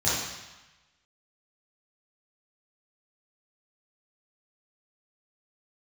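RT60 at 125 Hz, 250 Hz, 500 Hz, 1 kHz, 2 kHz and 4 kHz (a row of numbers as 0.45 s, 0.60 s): 1.1 s, 1.0 s, 0.95 s, 1.2 s, 1.2 s, 1.1 s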